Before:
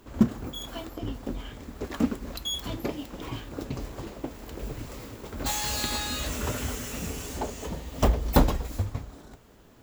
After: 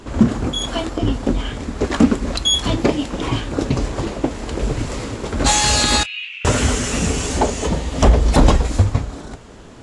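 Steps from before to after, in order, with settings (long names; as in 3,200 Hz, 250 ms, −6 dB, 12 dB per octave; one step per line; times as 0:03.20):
0:06.03–0:06.45: flat-topped band-pass 2,600 Hz, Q 4.1
boost into a limiter +16 dB
level −1 dB
AAC 64 kbit/s 22,050 Hz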